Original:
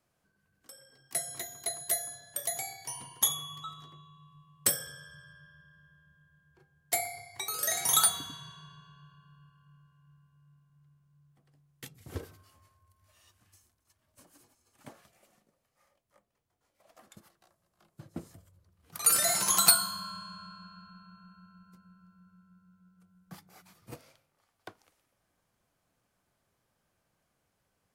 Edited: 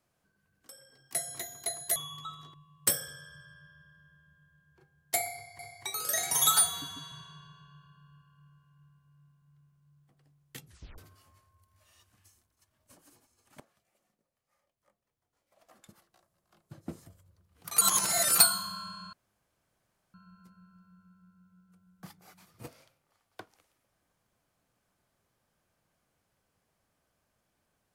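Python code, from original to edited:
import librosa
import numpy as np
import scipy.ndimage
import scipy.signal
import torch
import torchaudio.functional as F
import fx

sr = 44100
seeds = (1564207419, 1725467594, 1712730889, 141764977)

y = fx.edit(x, sr, fx.cut(start_s=1.96, length_s=1.39),
    fx.cut(start_s=3.93, length_s=0.4),
    fx.repeat(start_s=7.13, length_s=0.25, count=2),
    fx.stretch_span(start_s=7.88, length_s=0.52, factor=1.5),
    fx.tape_stop(start_s=11.94, length_s=0.32),
    fx.fade_in_from(start_s=14.88, length_s=3.13, floor_db=-14.5),
    fx.reverse_span(start_s=19.09, length_s=0.57),
    fx.room_tone_fill(start_s=20.41, length_s=1.01), tone=tone)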